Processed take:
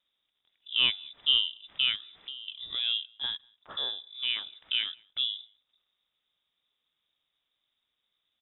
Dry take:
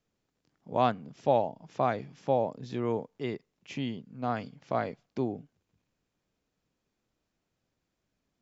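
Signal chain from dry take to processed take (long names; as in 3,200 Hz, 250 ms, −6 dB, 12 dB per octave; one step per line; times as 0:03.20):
slap from a distant wall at 33 metres, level −30 dB
voice inversion scrambler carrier 3,700 Hz
0:01.95–0:02.48: downward compressor 5 to 1, threshold −41 dBFS, peak gain reduction 17.5 dB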